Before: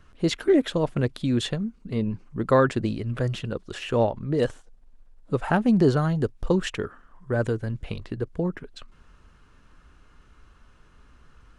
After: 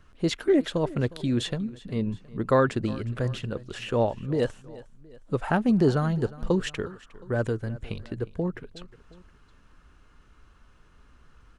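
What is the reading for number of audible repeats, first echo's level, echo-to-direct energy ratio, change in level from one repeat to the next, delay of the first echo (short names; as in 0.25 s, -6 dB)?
2, -19.5 dB, -18.5 dB, -5.5 dB, 0.359 s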